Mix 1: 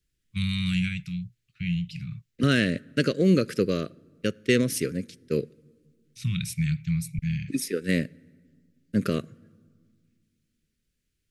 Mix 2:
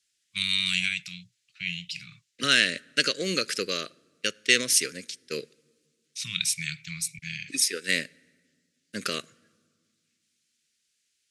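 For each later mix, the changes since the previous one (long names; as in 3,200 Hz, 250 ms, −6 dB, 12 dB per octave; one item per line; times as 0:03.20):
master: add meter weighting curve ITU-R 468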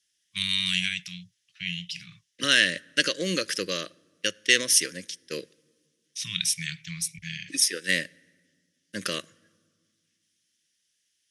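master: add EQ curve with evenly spaced ripples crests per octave 1.2, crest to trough 7 dB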